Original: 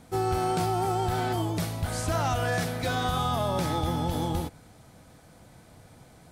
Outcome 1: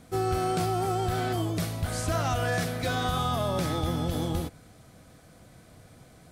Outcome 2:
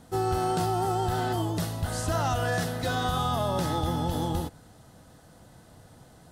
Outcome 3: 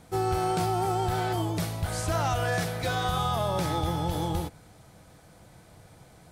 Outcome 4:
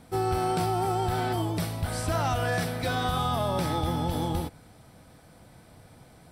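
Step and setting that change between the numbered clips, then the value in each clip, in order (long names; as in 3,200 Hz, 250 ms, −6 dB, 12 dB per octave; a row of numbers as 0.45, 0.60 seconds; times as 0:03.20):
notch filter, centre frequency: 880, 2,300, 250, 6,700 Hertz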